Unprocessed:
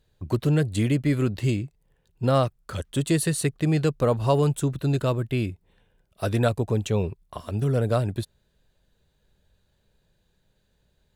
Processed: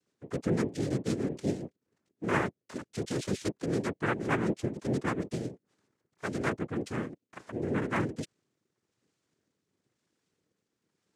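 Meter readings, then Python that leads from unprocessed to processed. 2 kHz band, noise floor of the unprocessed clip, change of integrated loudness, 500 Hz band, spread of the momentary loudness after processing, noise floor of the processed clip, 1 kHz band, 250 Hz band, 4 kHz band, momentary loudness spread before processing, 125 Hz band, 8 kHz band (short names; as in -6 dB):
0.0 dB, -69 dBFS, -8.0 dB, -8.0 dB, 11 LU, -85 dBFS, -5.5 dB, -6.0 dB, -9.0 dB, 10 LU, -13.0 dB, -11.0 dB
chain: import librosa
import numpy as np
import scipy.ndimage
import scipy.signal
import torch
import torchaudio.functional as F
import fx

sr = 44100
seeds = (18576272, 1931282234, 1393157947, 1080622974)

y = fx.fixed_phaser(x, sr, hz=1800.0, stages=8)
y = fx.rotary_switch(y, sr, hz=8.0, then_hz=1.0, switch_at_s=5.87)
y = fx.noise_vocoder(y, sr, seeds[0], bands=3)
y = F.gain(torch.from_numpy(y), -3.5).numpy()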